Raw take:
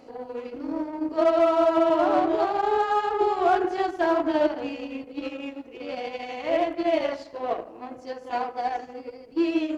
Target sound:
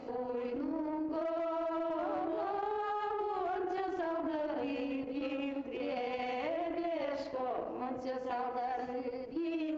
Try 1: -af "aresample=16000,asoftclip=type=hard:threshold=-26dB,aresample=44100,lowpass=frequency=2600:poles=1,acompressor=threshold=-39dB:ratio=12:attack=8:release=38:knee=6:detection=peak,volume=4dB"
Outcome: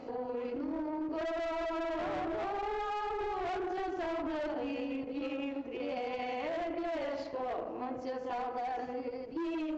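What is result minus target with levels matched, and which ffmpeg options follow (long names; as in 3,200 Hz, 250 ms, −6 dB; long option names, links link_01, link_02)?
hard clipping: distortion +18 dB
-af "aresample=16000,asoftclip=type=hard:threshold=-15dB,aresample=44100,lowpass=frequency=2600:poles=1,acompressor=threshold=-39dB:ratio=12:attack=8:release=38:knee=6:detection=peak,volume=4dB"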